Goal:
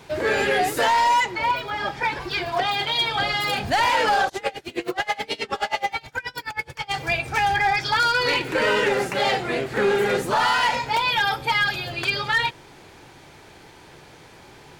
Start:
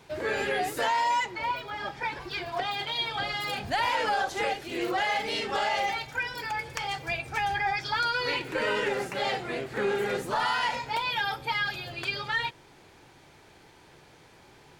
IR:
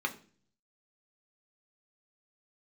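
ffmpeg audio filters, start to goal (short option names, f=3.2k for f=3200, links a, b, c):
-filter_complex "[0:a]asoftclip=type=hard:threshold=-22.5dB,asplit=3[a][b][c];[a]afade=t=out:st=4.28:d=0.02[d];[b]aeval=exprs='val(0)*pow(10,-27*(0.5-0.5*cos(2*PI*9.4*n/s))/20)':c=same,afade=t=in:st=4.28:d=0.02,afade=t=out:st=6.92:d=0.02[e];[c]afade=t=in:st=6.92:d=0.02[f];[d][e][f]amix=inputs=3:normalize=0,volume=8dB"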